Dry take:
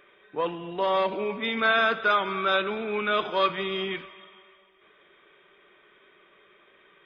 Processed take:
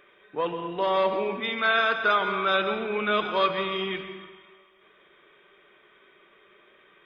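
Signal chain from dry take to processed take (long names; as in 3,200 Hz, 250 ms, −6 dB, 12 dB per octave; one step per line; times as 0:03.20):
0:01.41–0:02.00: low-shelf EQ 390 Hz −8 dB
dense smooth reverb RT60 1.1 s, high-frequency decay 0.55×, pre-delay 110 ms, DRR 8.5 dB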